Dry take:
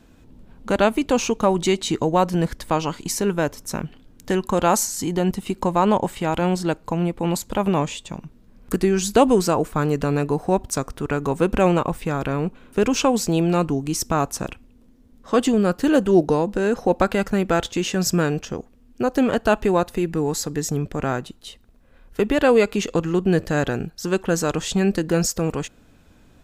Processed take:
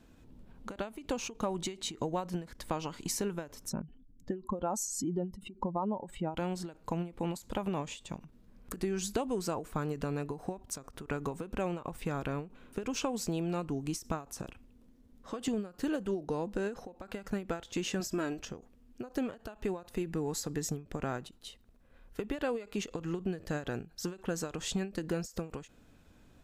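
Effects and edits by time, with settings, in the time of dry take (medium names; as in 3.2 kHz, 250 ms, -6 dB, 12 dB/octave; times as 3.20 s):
3.69–6.37 s: spectral contrast enhancement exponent 1.8
14.41–15.48 s: compression, threshold -26 dBFS
18.00–18.43 s: comb 3.1 ms, depth 66%
whole clip: compression, threshold -22 dBFS; endings held to a fixed fall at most 180 dB/s; trim -7.5 dB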